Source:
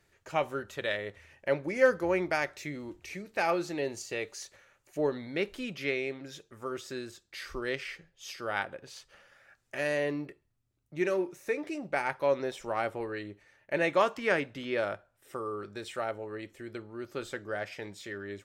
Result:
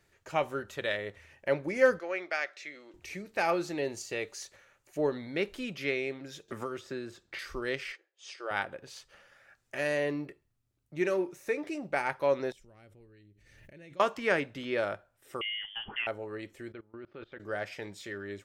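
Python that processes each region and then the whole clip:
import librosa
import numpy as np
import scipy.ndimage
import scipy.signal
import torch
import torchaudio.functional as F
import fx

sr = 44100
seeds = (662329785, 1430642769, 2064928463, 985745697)

y = fx.chain(x, sr, fx.bandpass_edges(low_hz=660.0, high_hz=5100.0),
    fx.peak_eq(hz=930.0, db=-11.5, octaves=0.38), at=(1.99, 2.94))
y = fx.chain(y, sr, fx.high_shelf(hz=4200.0, db=-11.5),
    fx.band_squash(depth_pct=100), at=(6.48, 7.39))
y = fx.chain(y, sr, fx.brickwall_bandpass(low_hz=310.0, high_hz=10000.0),
    fx.high_shelf(hz=5800.0, db=-6.0),
    fx.transient(attack_db=-3, sustain_db=-9), at=(7.92, 8.51))
y = fx.chain(y, sr, fx.tone_stack(knobs='10-0-1'),
    fx.pre_swell(db_per_s=35.0), at=(12.52, 14.0))
y = fx.chain(y, sr, fx.freq_invert(carrier_hz=3300),
    fx.band_squash(depth_pct=40), at=(15.41, 16.07))
y = fx.chain(y, sr, fx.lowpass(hz=3300.0, slope=24),
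    fx.level_steps(step_db=22), at=(16.72, 17.4))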